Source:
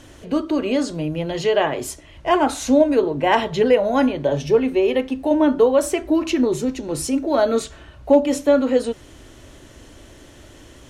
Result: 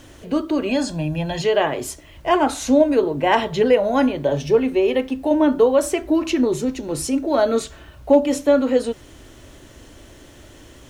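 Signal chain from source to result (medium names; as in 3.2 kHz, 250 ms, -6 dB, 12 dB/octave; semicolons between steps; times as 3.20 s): 0.69–1.42 s: comb 1.2 ms, depth 78%; bit crusher 10-bit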